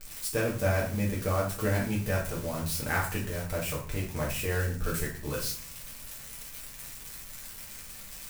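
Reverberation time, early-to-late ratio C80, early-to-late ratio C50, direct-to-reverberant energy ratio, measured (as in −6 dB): 0.40 s, 11.0 dB, 6.5 dB, −5.0 dB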